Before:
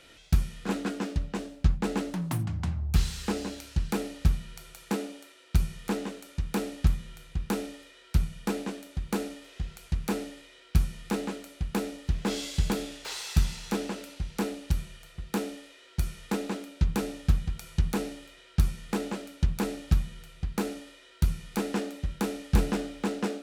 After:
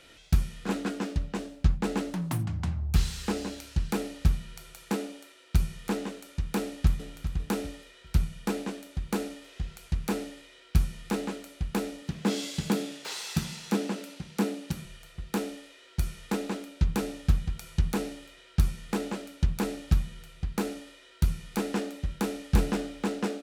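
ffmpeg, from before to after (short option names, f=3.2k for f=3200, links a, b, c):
-filter_complex "[0:a]asplit=2[a][b];[b]afade=t=in:st=6.59:d=0.01,afade=t=out:st=7.14:d=0.01,aecho=0:1:400|800|1200:0.316228|0.0948683|0.0284605[c];[a][c]amix=inputs=2:normalize=0,asettb=1/sr,asplit=3[d][e][f];[d]atrim=end=12.024[g];[e]atrim=start=12.02:end=14.85,asetpts=PTS-STARTPTS,afade=t=in:d=0.004:c=qsin,afade=t=out:st=2.826:d=0.004:c=qsin,highpass=f=180:t=q:w=1.5[h];[f]atrim=start=14.846[i];[g][h]acrossfade=d=0.004:c1=hsin:c2=qsin[j];[j][i]acrossfade=d=0.004:c1=qsin:c2=hsin"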